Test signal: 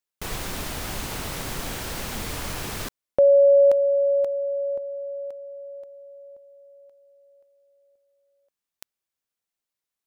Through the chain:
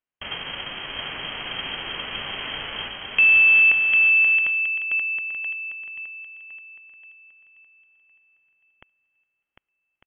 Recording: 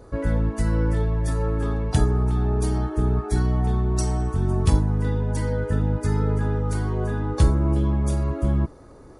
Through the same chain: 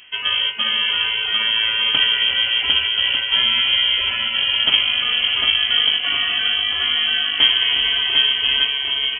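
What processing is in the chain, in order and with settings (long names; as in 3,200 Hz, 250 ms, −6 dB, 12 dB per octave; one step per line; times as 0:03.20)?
spectral envelope flattened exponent 0.6
bouncing-ball delay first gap 750 ms, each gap 0.6×, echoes 5
voice inversion scrambler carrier 3,200 Hz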